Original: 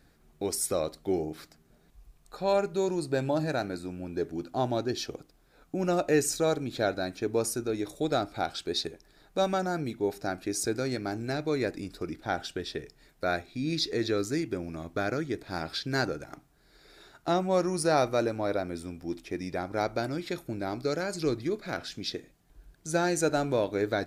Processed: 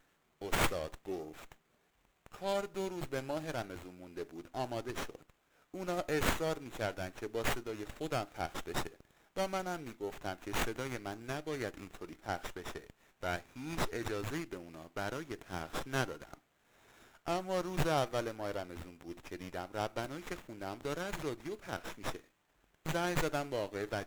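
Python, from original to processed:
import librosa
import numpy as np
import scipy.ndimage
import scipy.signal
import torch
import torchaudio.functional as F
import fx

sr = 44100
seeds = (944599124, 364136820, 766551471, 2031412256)

y = fx.riaa(x, sr, side='recording')
y = fx.running_max(y, sr, window=9)
y = y * librosa.db_to_amplitude(-7.5)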